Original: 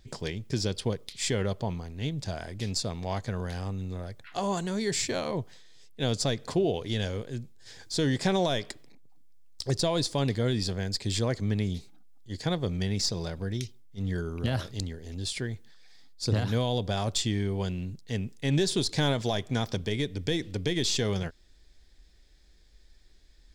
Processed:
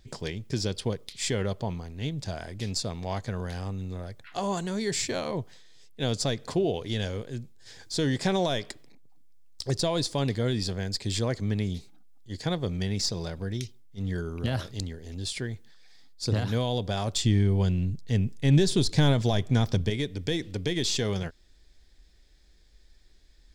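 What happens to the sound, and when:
0:17.23–0:19.90: low-shelf EQ 200 Hz +10.5 dB

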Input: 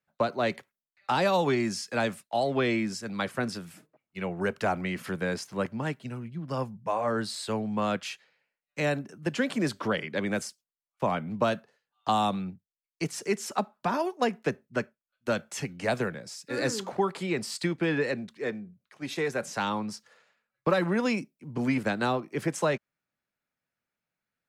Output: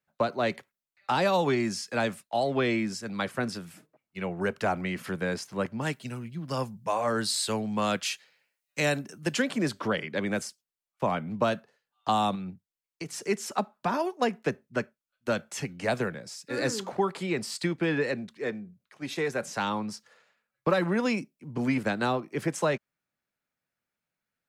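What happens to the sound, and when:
0:05.81–0:09.42: high-shelf EQ 3,200 Hz +11 dB
0:12.35–0:13.24: downward compressor, threshold −32 dBFS

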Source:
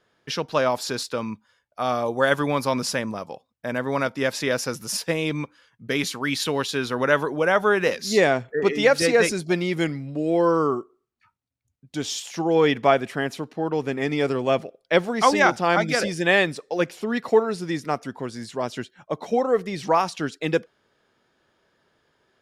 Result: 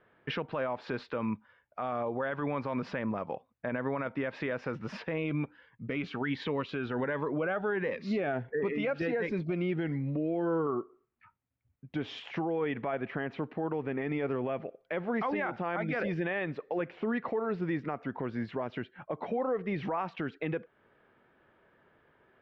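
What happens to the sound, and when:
0:05.18–0:10.67: phaser whose notches keep moving one way rising 1.4 Hz
whole clip: low-pass filter 2,500 Hz 24 dB per octave; downward compressor 2 to 1, threshold −31 dBFS; brickwall limiter −25.5 dBFS; level +2 dB

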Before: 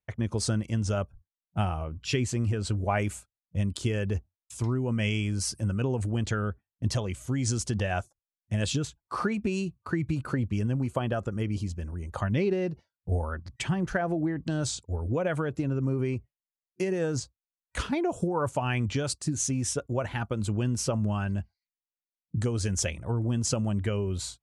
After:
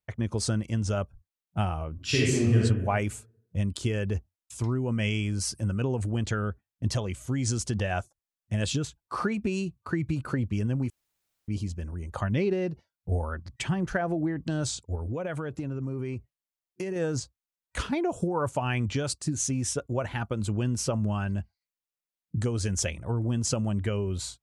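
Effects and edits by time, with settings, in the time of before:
0:01.94–0:02.58: thrown reverb, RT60 0.99 s, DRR −5 dB
0:10.90–0:11.48: fill with room tone
0:14.95–0:16.96: downward compressor 2.5 to 1, threshold −30 dBFS

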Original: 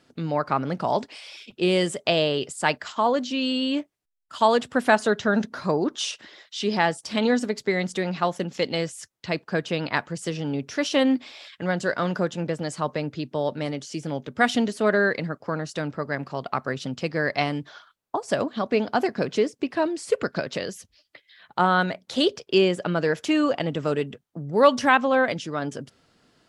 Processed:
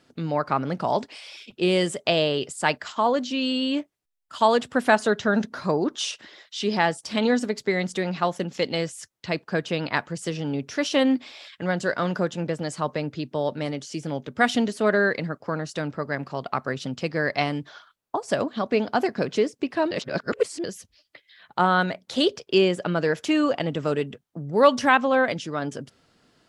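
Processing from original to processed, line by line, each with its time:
0:19.91–0:20.64: reverse

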